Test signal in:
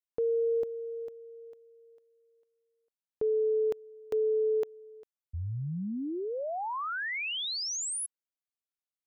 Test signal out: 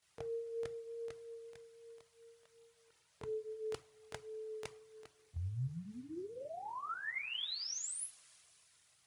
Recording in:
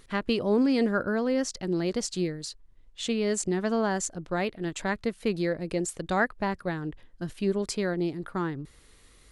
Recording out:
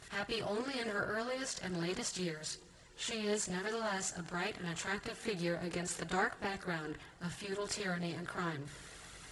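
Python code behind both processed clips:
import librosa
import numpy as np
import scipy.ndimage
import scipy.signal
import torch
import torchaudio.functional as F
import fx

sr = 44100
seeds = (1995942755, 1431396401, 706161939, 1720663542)

y = fx.bin_compress(x, sr, power=0.6)
y = scipy.signal.sosfilt(scipy.signal.butter(2, 70.0, 'highpass', fs=sr, output='sos'), y)
y = fx.peak_eq(y, sr, hz=370.0, db=-8.0, octaves=1.9)
y = fx.rev_double_slope(y, sr, seeds[0], early_s=0.3, late_s=4.3, knee_db=-21, drr_db=10.5)
y = fx.chorus_voices(y, sr, voices=6, hz=0.7, base_ms=23, depth_ms=1.6, mix_pct=70)
y = y * librosa.db_to_amplitude(-6.0)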